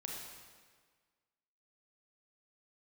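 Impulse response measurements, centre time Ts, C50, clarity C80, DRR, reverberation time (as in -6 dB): 82 ms, 0.5 dB, 2.5 dB, -2.0 dB, 1.6 s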